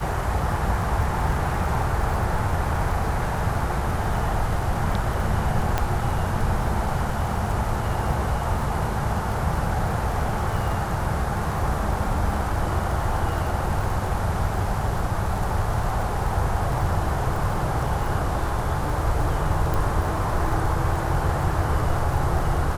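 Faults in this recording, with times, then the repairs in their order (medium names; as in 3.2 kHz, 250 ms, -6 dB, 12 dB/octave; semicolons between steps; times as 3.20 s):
crackle 46 per s -30 dBFS
5.78 s: pop -8 dBFS
19.74 s: pop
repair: de-click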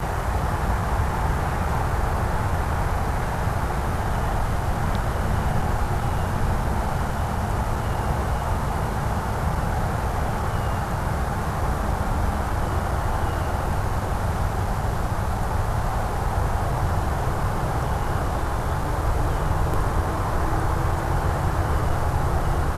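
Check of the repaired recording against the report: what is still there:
19.74 s: pop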